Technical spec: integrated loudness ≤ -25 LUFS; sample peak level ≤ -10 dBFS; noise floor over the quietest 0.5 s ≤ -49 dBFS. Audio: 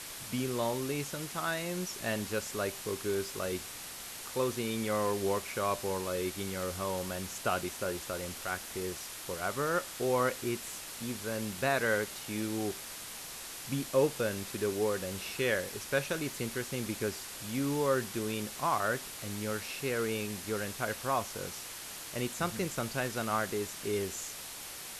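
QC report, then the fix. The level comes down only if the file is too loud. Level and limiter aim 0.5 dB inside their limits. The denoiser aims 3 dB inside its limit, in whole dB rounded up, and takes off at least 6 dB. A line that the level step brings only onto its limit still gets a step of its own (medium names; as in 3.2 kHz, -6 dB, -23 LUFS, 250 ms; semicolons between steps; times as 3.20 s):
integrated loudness -34.0 LUFS: pass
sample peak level -16.0 dBFS: pass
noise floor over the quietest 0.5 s -44 dBFS: fail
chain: noise reduction 8 dB, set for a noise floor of -44 dBFS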